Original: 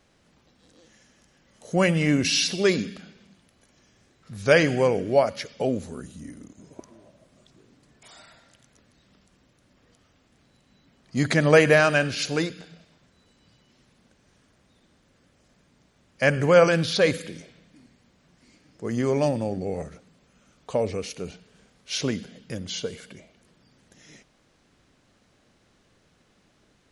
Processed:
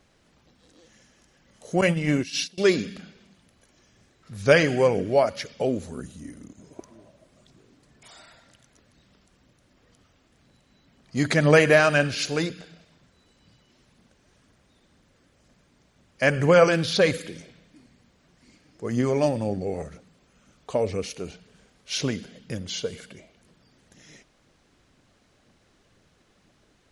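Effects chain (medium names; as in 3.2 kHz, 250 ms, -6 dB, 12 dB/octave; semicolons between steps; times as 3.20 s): 1.81–2.58 s: gate -21 dBFS, range -24 dB; phaser 2 Hz, delay 3.3 ms, feedback 27%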